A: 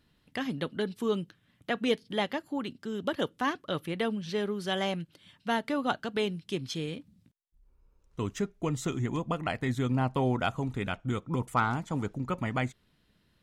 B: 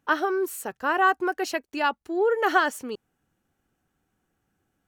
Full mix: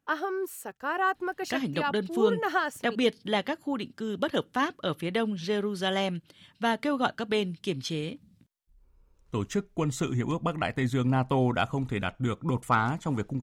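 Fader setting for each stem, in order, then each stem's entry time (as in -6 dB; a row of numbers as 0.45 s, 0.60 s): +2.5 dB, -6.0 dB; 1.15 s, 0.00 s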